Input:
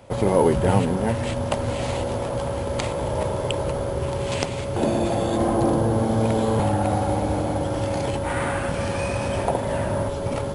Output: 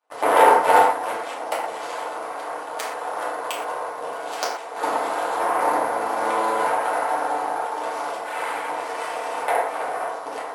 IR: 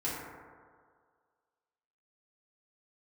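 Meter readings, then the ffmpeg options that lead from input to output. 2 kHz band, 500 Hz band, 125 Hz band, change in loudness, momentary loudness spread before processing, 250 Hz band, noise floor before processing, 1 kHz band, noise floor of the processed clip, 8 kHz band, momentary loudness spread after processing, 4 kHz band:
+6.0 dB, -2.0 dB, under -30 dB, +0.5 dB, 6 LU, -13.0 dB, -28 dBFS, +7.5 dB, -33 dBFS, -0.5 dB, 14 LU, -1.0 dB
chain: -filter_complex "[0:a]aeval=exprs='0.631*(cos(1*acos(clip(val(0)/0.631,-1,1)))-cos(1*PI/2))+0.251*(cos(2*acos(clip(val(0)/0.631,-1,1)))-cos(2*PI/2))+0.0891*(cos(7*acos(clip(val(0)/0.631,-1,1)))-cos(7*PI/2))+0.0891*(cos(8*acos(clip(val(0)/0.631,-1,1)))-cos(8*PI/2))':c=same,highpass=f=700:t=q:w=1.5[a];[1:a]atrim=start_sample=2205,atrim=end_sample=6174[b];[a][b]afir=irnorm=-1:irlink=0,volume=-1.5dB"

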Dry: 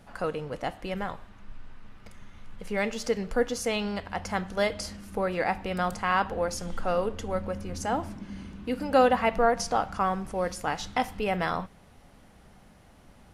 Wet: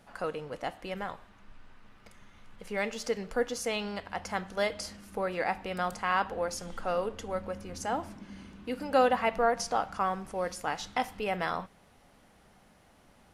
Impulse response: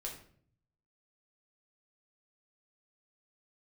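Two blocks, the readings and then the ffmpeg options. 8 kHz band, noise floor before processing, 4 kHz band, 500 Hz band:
-2.5 dB, -55 dBFS, -2.5 dB, -3.5 dB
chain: -af "lowshelf=f=200:g=-8,volume=-2.5dB"

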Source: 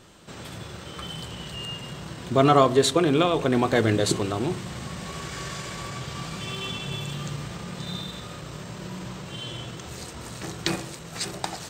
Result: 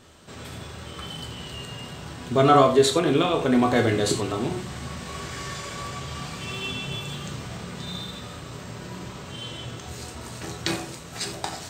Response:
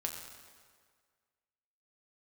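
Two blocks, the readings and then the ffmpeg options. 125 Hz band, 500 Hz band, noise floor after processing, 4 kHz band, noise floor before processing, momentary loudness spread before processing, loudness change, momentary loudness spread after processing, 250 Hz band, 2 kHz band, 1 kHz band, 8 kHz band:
-1.0 dB, +1.0 dB, -40 dBFS, 0.0 dB, -40 dBFS, 17 LU, +1.0 dB, 18 LU, +0.5 dB, +0.5 dB, +1.5 dB, 0.0 dB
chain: -filter_complex "[1:a]atrim=start_sample=2205,atrim=end_sample=4410[a];[0:a][a]afir=irnorm=-1:irlink=0"

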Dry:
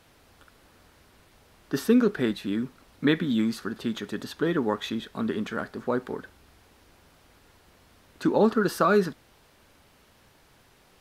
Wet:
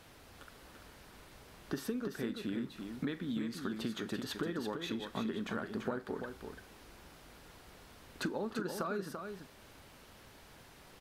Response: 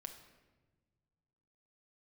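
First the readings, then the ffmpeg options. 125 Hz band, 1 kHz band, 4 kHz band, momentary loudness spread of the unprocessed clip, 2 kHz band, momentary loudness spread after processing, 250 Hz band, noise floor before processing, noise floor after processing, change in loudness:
-10.0 dB, -13.0 dB, -7.5 dB, 12 LU, -10.5 dB, 19 LU, -12.0 dB, -60 dBFS, -58 dBFS, -12.5 dB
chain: -filter_complex "[0:a]acompressor=threshold=-35dB:ratio=20,aecho=1:1:339:0.473,asplit=2[a][b];[1:a]atrim=start_sample=2205,adelay=42[c];[b][c]afir=irnorm=-1:irlink=0,volume=-13.5dB[d];[a][d]amix=inputs=2:normalize=0,volume=1dB"

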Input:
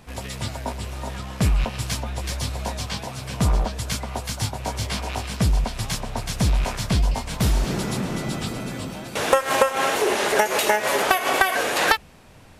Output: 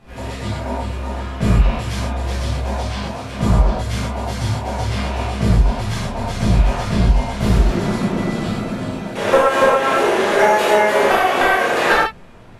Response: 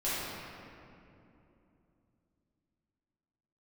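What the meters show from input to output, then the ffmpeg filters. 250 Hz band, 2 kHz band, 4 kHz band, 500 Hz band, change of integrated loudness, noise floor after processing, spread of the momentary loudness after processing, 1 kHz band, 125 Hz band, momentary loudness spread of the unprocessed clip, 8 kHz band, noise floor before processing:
+7.5 dB, +4.5 dB, +0.5 dB, +7.5 dB, +5.5 dB, -34 dBFS, 11 LU, +6.0 dB, +6.0 dB, 11 LU, -4.0 dB, -46 dBFS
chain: -filter_complex "[0:a]highshelf=f=3.9k:g=-11.5[a];[1:a]atrim=start_sample=2205,afade=t=out:st=0.14:d=0.01,atrim=end_sample=6615,asetrate=26901,aresample=44100[b];[a][b]afir=irnorm=-1:irlink=0,volume=-2dB"

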